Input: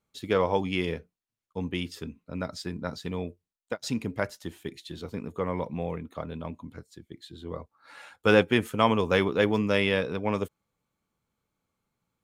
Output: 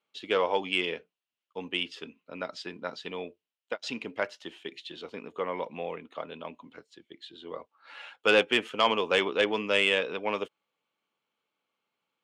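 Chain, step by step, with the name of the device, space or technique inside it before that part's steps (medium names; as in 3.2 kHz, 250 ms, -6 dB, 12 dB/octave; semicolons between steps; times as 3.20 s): intercom (band-pass 380–4700 Hz; peaking EQ 2.9 kHz +10 dB 0.5 oct; saturation -11.5 dBFS, distortion -18 dB)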